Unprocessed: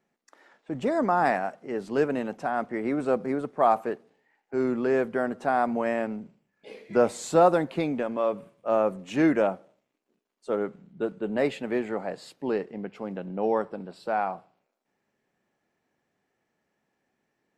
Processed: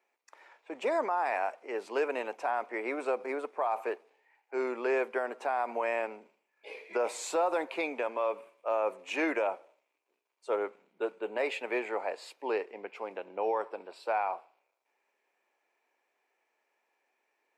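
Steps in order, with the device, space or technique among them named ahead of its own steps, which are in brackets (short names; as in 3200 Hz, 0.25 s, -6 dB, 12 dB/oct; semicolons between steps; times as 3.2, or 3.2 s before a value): laptop speaker (HPF 390 Hz 24 dB/oct; bell 950 Hz +7 dB 0.37 oct; bell 2400 Hz +10.5 dB 0.31 oct; limiter -19 dBFS, peak gain reduction 11.5 dB); gain -2 dB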